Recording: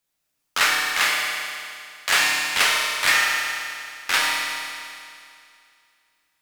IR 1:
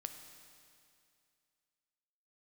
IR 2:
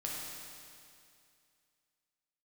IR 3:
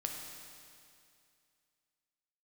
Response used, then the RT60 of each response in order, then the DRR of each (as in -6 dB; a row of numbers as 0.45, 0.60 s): 2; 2.4, 2.4, 2.4 s; 6.5, -4.0, 1.0 dB